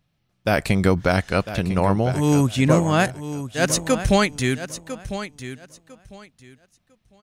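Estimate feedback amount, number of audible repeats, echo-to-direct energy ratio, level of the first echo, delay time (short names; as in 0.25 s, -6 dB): 21%, 2, -12.0 dB, -12.0 dB, 1.001 s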